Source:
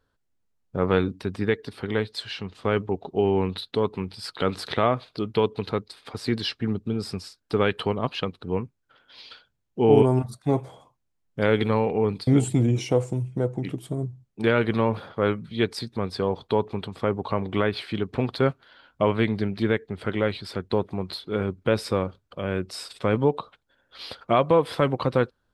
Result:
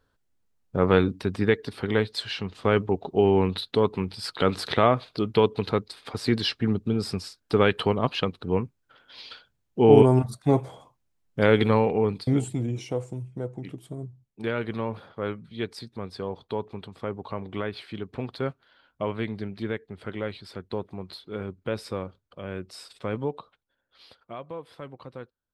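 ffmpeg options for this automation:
-af "volume=2dB,afade=t=out:st=11.74:d=0.79:silence=0.334965,afade=t=out:st=23.13:d=1.19:silence=0.281838"

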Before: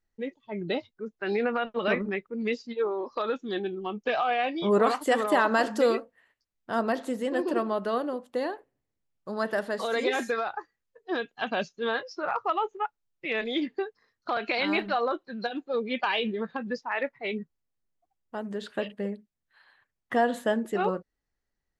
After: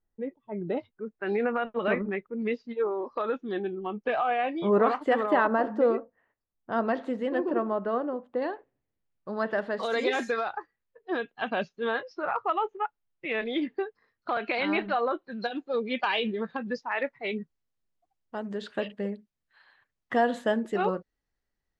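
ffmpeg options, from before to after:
-af "asetnsamples=n=441:p=0,asendcmd='0.77 lowpass f 2200;5.47 lowpass f 1200;6.72 lowpass f 2700;7.39 lowpass f 1600;8.42 lowpass f 3100;9.83 lowpass f 6500;10.58 lowpass f 3000;15.32 lowpass f 6500',lowpass=1.2k"

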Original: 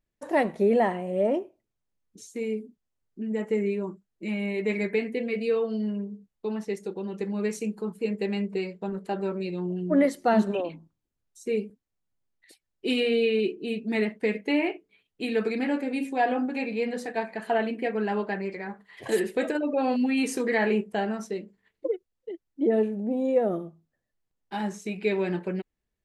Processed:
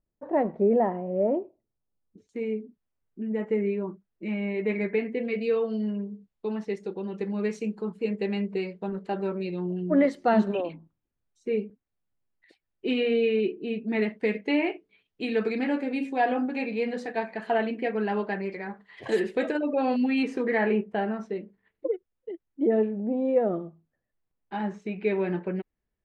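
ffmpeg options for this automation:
-af "asetnsamples=n=441:p=0,asendcmd='2.29 lowpass f 2500;5.25 lowpass f 4200;10.73 lowpass f 2600;14.02 lowpass f 4800;20.23 lowpass f 2400',lowpass=1k"

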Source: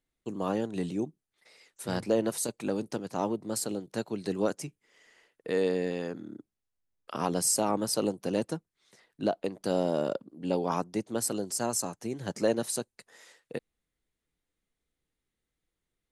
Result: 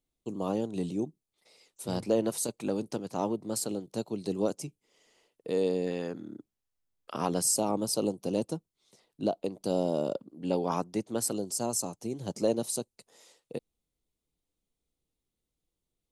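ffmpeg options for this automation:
-af "asetnsamples=n=441:p=0,asendcmd='2 equalizer g -6.5;3.9 equalizer g -14.5;5.87 equalizer g -3;7.42 equalizer g -15;10.16 equalizer g -4.5;11.31 equalizer g -15',equalizer=f=1.7k:t=o:w=0.8:g=-13"

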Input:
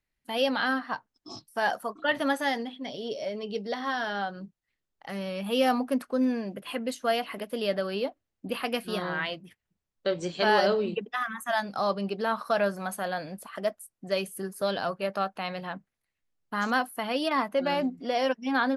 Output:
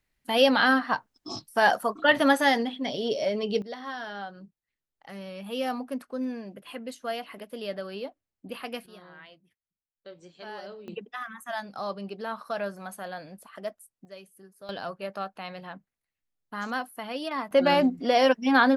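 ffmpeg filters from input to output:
-af "asetnsamples=n=441:p=0,asendcmd='3.62 volume volume -6dB;8.86 volume volume -18dB;10.88 volume volume -6dB;14.05 volume volume -17dB;14.69 volume volume -5dB;17.51 volume volume 6dB',volume=6dB"

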